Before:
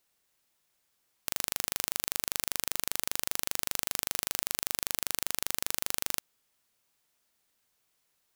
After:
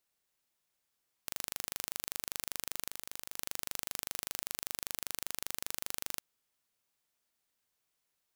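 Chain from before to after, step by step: 2.89–3.38 negative-ratio compressor -38 dBFS, ratio -1; gain -7 dB

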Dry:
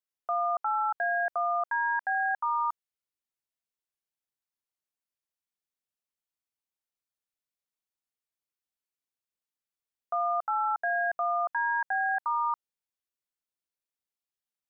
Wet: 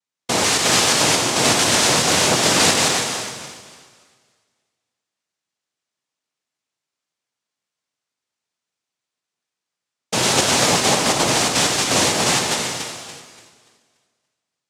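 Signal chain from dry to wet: regenerating reverse delay 0.144 s, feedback 57%, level -3 dB; noise vocoder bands 2; non-linear reverb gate 0.4 s flat, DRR 3 dB; gain +8.5 dB

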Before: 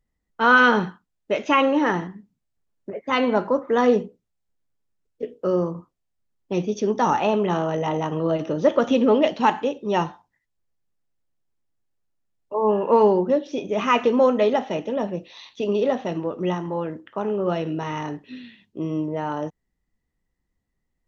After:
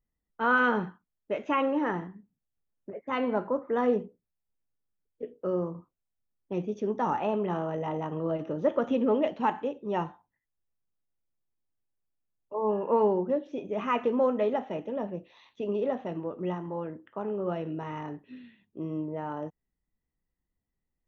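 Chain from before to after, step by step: bell 5100 Hz -15 dB 1.3 oct; gain -7.5 dB

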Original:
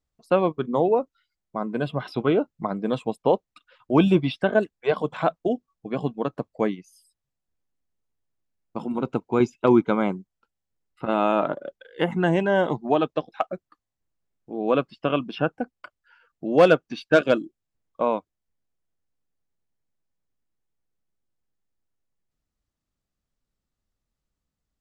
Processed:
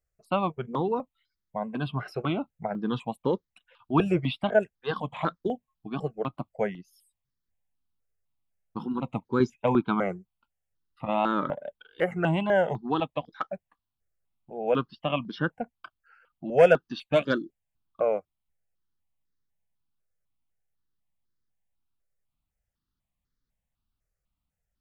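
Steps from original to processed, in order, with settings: wow and flutter 77 cents; step phaser 4 Hz 960–2600 Hz

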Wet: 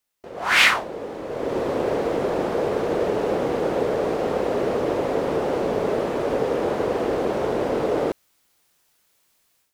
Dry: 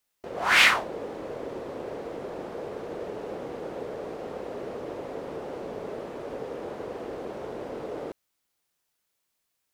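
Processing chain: AGC gain up to 14 dB; gain -1 dB

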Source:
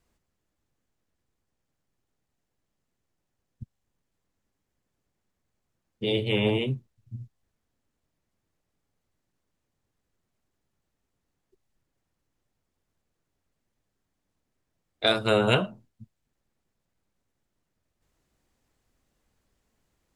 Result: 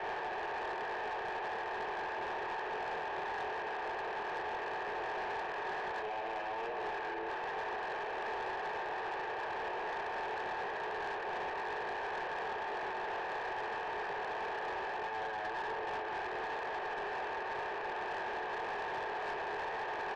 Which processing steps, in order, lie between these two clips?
per-bin compression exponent 0.2; comb 1.3 ms, depth 43%; limiter -24.5 dBFS, peak gain reduction 21.5 dB; chorus voices 2, 1.1 Hz, delay 23 ms, depth 4.1 ms; mistuned SSB +220 Hz 180–2100 Hz; soft clip -37.5 dBFS, distortion -12 dB; gain +3.5 dB

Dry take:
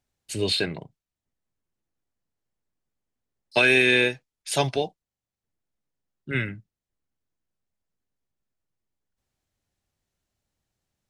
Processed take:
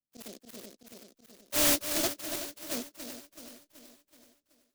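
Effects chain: bin magnitudes rounded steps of 30 dB; Chebyshev band-stop 280–770 Hz, order 3; gate -47 dBFS, range -15 dB; bell 90 Hz +5.5 dB 0.92 oct; auto swell 0.384 s; hard clip -24.5 dBFS, distortion -7 dB; swung echo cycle 0.883 s, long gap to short 3:1, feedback 52%, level -9 dB; speed mistake 33 rpm record played at 78 rpm; AGC gain up to 10 dB; noise-modulated delay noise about 4900 Hz, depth 0.19 ms; gain -6 dB

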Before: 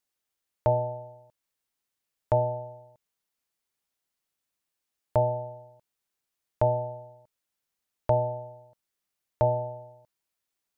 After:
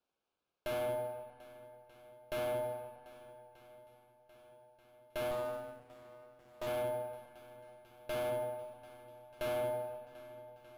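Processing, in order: half-wave gain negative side -7 dB; HPF 320 Hz 12 dB/oct; tilt shelf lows +7.5 dB, about 1200 Hz; careless resampling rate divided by 4×, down none, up zero stuff; tube stage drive 28 dB, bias 0.2; Butterworth band-stop 1900 Hz, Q 3.9; air absorption 220 m; swung echo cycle 1.234 s, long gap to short 1.5:1, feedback 56%, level -19 dB; digital reverb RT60 2.9 s, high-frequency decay 0.6×, pre-delay 90 ms, DRR 13 dB; 5.31–6.67 running maximum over 17 samples; gain +6 dB

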